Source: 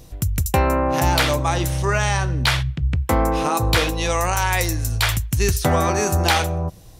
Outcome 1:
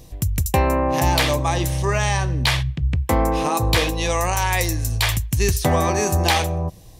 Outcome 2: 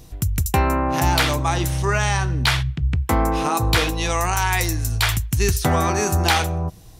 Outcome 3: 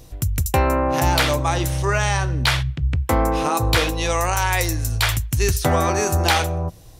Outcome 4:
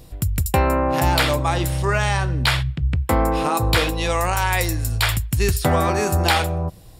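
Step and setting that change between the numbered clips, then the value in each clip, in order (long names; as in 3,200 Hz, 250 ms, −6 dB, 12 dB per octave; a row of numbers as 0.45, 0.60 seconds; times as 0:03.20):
notch filter, centre frequency: 1,400, 550, 190, 6,100 Hertz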